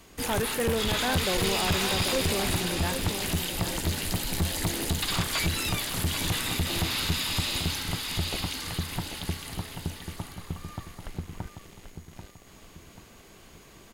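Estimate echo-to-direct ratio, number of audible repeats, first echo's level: -7.0 dB, 3, -8.0 dB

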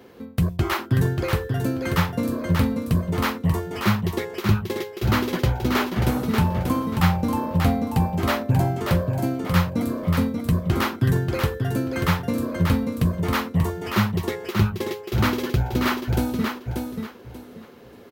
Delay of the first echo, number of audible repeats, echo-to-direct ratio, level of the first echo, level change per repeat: 586 ms, 3, -4.5 dB, -5.0 dB, -12.5 dB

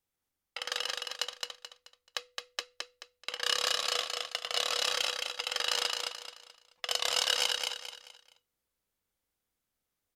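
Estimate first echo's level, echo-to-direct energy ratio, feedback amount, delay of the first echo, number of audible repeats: -3.5 dB, -3.0 dB, 34%, 216 ms, 4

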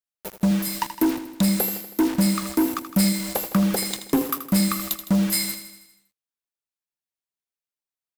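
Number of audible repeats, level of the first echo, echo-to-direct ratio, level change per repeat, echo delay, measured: 6, -11.0 dB, -9.0 dB, -4.5 dB, 80 ms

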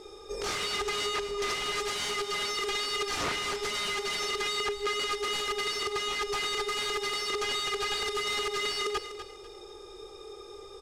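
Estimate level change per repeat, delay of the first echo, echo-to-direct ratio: -10.0 dB, 247 ms, -10.5 dB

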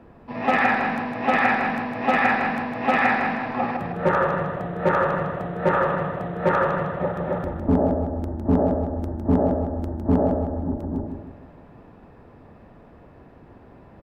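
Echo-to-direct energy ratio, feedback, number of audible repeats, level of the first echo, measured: -5.5 dB, 41%, 4, -6.5 dB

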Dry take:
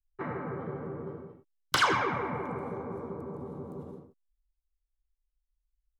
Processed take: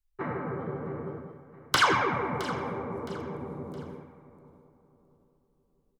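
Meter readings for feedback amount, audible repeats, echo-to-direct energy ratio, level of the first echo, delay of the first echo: 35%, 3, -15.0 dB, -15.5 dB, 666 ms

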